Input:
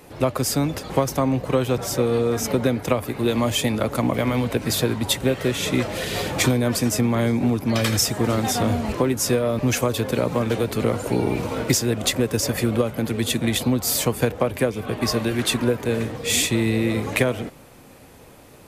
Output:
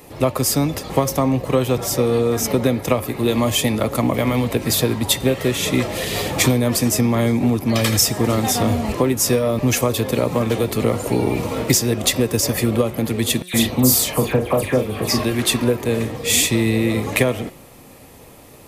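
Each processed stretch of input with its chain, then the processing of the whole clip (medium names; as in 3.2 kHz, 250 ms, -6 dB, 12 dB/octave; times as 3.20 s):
13.42–15.24 s: doubling 39 ms -7 dB + phase dispersion lows, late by 117 ms, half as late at 2.4 kHz
whole clip: treble shelf 11 kHz +7 dB; band-stop 1.5 kHz, Q 8.5; de-hum 180.2 Hz, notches 34; trim +3 dB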